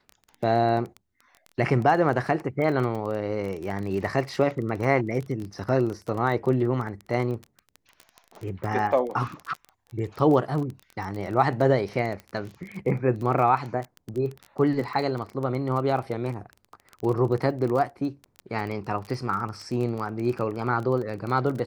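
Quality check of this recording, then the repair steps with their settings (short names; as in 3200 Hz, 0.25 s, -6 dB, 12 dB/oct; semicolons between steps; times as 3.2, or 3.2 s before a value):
crackle 21/s -30 dBFS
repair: de-click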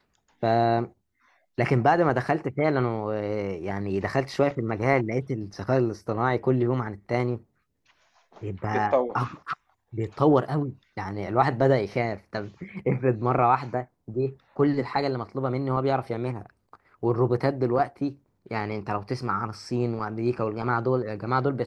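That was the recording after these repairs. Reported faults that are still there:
none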